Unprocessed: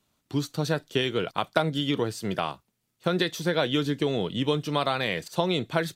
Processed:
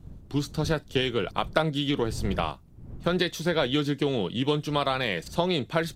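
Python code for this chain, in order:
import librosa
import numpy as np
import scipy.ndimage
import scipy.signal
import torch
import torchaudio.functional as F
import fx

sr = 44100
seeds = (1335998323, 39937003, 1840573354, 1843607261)

y = fx.dmg_wind(x, sr, seeds[0], corner_hz=120.0, level_db=-41.0)
y = fx.doppler_dist(y, sr, depth_ms=0.13)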